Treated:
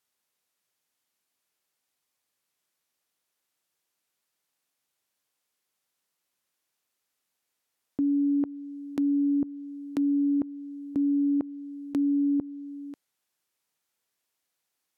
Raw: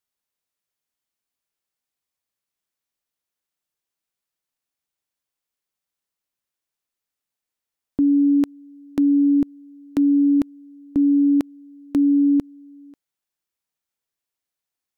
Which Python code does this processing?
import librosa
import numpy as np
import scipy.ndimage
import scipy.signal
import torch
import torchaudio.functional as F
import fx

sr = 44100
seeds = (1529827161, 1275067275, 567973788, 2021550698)

p1 = fx.env_lowpass_down(x, sr, base_hz=990.0, full_db=-14.5)
p2 = fx.highpass(p1, sr, hz=160.0, slope=6)
p3 = fx.over_compress(p2, sr, threshold_db=-27.0, ratio=-0.5)
p4 = p2 + F.gain(torch.from_numpy(p3), -0.5).numpy()
y = F.gain(torch.from_numpy(p4), -8.0).numpy()